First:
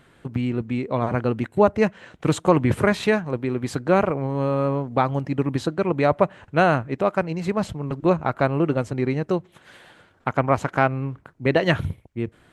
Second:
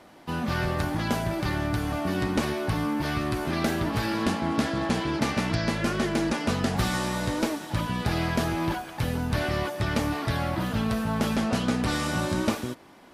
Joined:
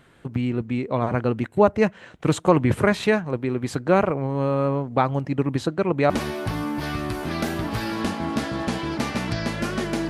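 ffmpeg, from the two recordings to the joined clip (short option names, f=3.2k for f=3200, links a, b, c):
-filter_complex "[0:a]apad=whole_dur=10.09,atrim=end=10.09,atrim=end=6.102[a];[1:a]atrim=start=2.318:end=6.31[b];[a][b]acrossfade=d=0.004:c1=hsin:c2=hsin"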